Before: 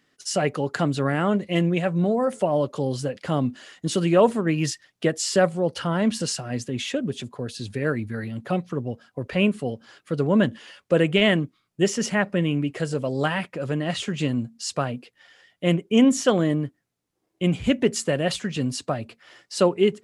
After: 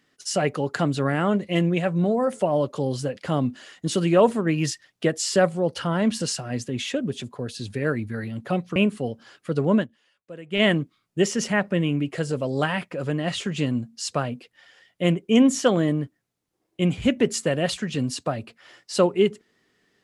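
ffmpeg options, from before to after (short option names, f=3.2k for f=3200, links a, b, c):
-filter_complex "[0:a]asplit=4[a][b][c][d];[a]atrim=end=8.762[e];[b]atrim=start=9.378:end=10.49,asetpts=PTS-STARTPTS,afade=t=out:st=0.992:d=0.12:silence=0.0944061[f];[c]atrim=start=10.49:end=11.12,asetpts=PTS-STARTPTS,volume=-20.5dB[g];[d]atrim=start=11.12,asetpts=PTS-STARTPTS,afade=t=in:d=0.12:silence=0.0944061[h];[f][g][h]concat=n=3:v=0:a=1[i];[e][i]acrossfade=d=0.004:c1=hsin:c2=hsin"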